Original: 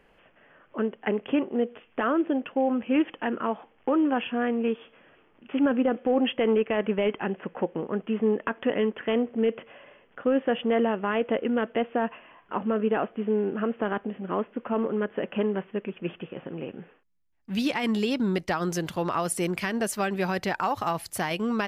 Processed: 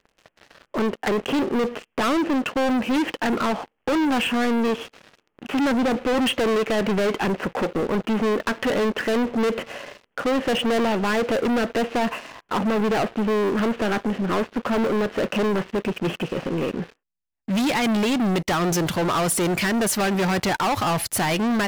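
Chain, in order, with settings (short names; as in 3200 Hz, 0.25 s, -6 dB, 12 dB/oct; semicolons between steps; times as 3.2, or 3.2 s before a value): sample leveller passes 5; gain -3.5 dB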